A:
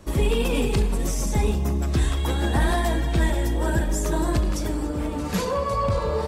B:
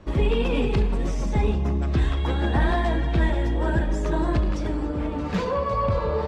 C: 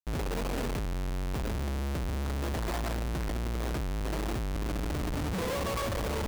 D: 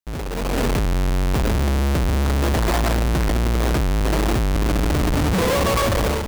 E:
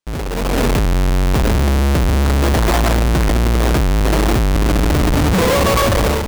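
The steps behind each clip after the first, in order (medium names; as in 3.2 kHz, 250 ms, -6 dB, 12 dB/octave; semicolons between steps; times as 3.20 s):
low-pass 3.3 kHz 12 dB/octave
Schmitt trigger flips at -28 dBFS; trim -9 dB
level rider gain up to 9.5 dB; trim +3.5 dB
careless resampling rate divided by 3×, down none, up hold; trim +5 dB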